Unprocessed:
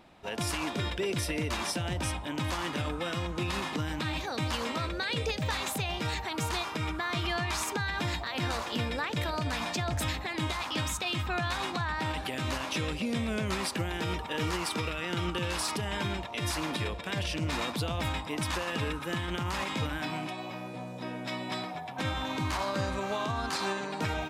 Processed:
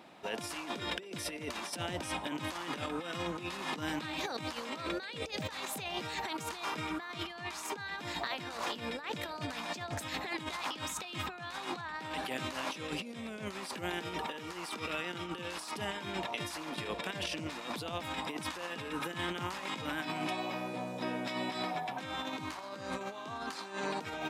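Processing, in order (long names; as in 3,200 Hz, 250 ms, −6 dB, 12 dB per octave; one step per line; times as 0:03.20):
high-pass filter 190 Hz 12 dB per octave
compressor whose output falls as the input rises −37 dBFS, ratio −0.5
level −1 dB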